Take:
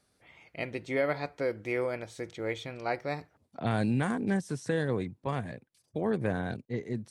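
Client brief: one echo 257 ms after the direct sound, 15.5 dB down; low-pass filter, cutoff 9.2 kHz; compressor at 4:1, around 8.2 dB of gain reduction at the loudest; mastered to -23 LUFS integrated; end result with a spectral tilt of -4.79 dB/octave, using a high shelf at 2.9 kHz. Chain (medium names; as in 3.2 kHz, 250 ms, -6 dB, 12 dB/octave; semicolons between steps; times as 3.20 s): low-pass 9.2 kHz; treble shelf 2.9 kHz -7 dB; compression 4:1, threshold -34 dBFS; delay 257 ms -15.5 dB; trim +16.5 dB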